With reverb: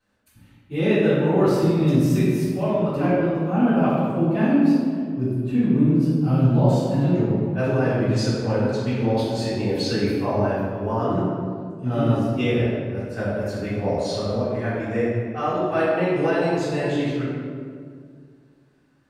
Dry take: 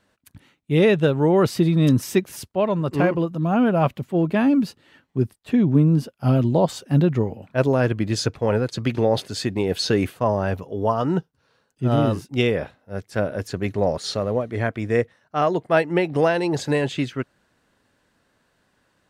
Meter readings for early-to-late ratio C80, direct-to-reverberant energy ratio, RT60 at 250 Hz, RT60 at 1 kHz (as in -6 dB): 0.5 dB, -15.0 dB, 2.7 s, 1.8 s